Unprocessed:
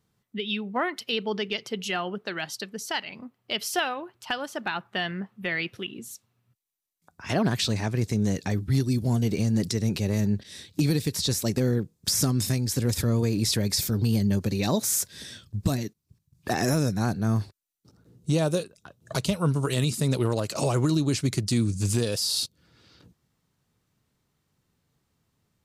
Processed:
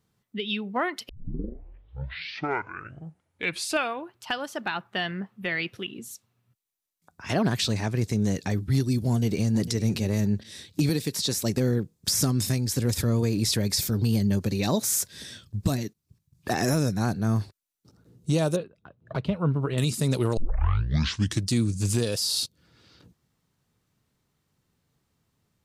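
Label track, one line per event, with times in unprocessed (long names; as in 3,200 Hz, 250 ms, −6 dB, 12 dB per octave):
1.090000	1.090000	tape start 3.05 s
9.090000	9.620000	delay throw 450 ms, feedback 10%, level −14 dB
10.890000	11.370000	high-pass filter 160 Hz
18.560000	19.780000	high-frequency loss of the air 460 metres
20.370000	20.370000	tape start 1.13 s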